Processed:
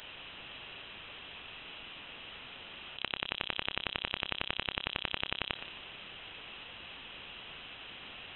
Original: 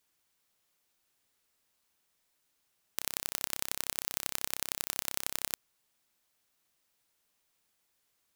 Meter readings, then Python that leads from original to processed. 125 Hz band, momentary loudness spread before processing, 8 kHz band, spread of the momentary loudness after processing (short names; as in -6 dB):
+6.5 dB, 4 LU, under -40 dB, 11 LU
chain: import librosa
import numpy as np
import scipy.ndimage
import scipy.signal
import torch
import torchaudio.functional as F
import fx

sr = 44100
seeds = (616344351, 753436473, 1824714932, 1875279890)

p1 = scipy.signal.sosfilt(scipy.signal.butter(2, 200.0, 'highpass', fs=sr, output='sos'), x)
p2 = fx.tube_stage(p1, sr, drive_db=14.0, bias=0.25)
p3 = fx.low_shelf(p2, sr, hz=440.0, db=-10.5)
p4 = fx.over_compress(p3, sr, threshold_db=-53.0, ratio=-0.5)
p5 = fx.band_shelf(p4, sr, hz=850.0, db=14.0, octaves=1.7)
p6 = p5 + fx.echo_feedback(p5, sr, ms=147, feedback_pct=44, wet_db=-12, dry=0)
p7 = (np.kron(p6[::3], np.eye(3)[0]) * 3)[:len(p6)]
p8 = fx.freq_invert(p7, sr, carrier_hz=3900)
y = p8 * librosa.db_to_amplitude(17.5)